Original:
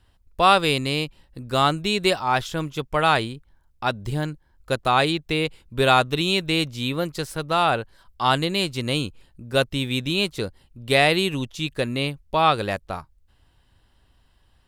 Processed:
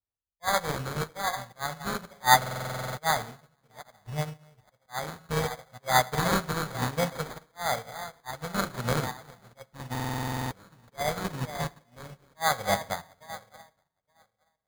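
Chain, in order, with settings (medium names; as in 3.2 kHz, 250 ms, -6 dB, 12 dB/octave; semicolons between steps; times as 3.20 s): backward echo that repeats 434 ms, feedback 61%, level -14 dB; de-hum 183.9 Hz, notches 33; slow attack 447 ms; peaking EQ 2.4 kHz -3 dB; in parallel at -1.5 dB: peak limiter -16.5 dBFS, peak gain reduction 9.5 dB; on the sum: high-pass 110 Hz 6 dB/octave; treble shelf 8.5 kHz +8 dB; static phaser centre 810 Hz, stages 4; reverberation, pre-delay 3 ms, DRR 5.5 dB; sample-and-hold 16×; buffer glitch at 2.37/9.91 s, samples 2048, times 12; upward expansion 2.5:1, over -47 dBFS; trim +5 dB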